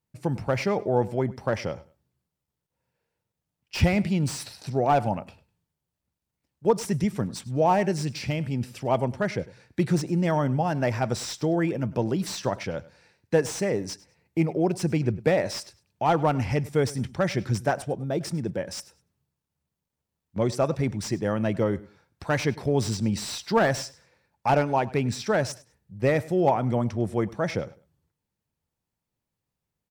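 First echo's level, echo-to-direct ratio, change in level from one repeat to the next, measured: -20.0 dB, -20.0 dB, -13.0 dB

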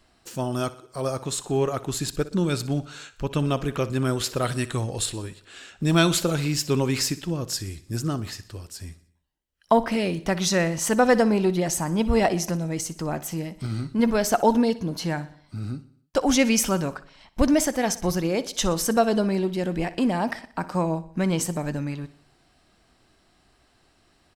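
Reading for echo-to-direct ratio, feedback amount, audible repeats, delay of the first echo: -15.5 dB, 53%, 4, 61 ms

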